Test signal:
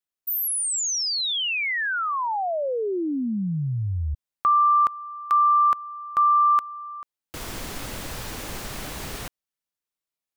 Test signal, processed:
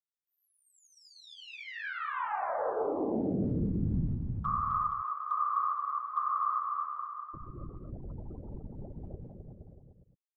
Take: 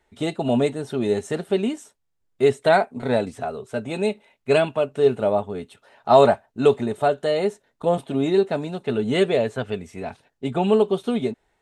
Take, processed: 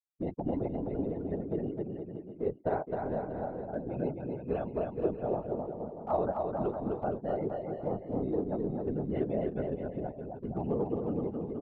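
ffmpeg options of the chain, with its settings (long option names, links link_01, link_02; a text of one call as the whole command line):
ffmpeg -i in.wav -af "afftfilt=real='re*gte(hypot(re,im),0.0562)':imag='im*gte(hypot(re,im),0.0562)':win_size=1024:overlap=0.75,lowpass=1100,adynamicequalizer=threshold=0.0158:dfrequency=150:dqfactor=1.3:tfrequency=150:tqfactor=1.3:attack=5:release=100:ratio=0.417:range=2.5:mode=boostabove:tftype=bell,acompressor=threshold=-27dB:ratio=2:attack=0.21:release=536:knee=1:detection=rms,afftfilt=real='hypot(re,im)*cos(2*PI*random(0))':imag='hypot(re,im)*sin(2*PI*random(1))':win_size=512:overlap=0.75,aecho=1:1:260|468|634.4|767.5|874:0.631|0.398|0.251|0.158|0.1" out.wav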